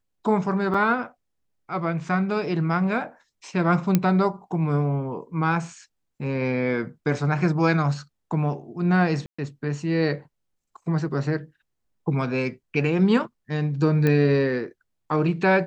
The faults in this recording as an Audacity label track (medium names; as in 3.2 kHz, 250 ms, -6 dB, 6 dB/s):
0.740000	0.740000	dropout 4.7 ms
3.950000	3.950000	pop -6 dBFS
9.260000	9.380000	dropout 125 ms
14.070000	14.070000	pop -11 dBFS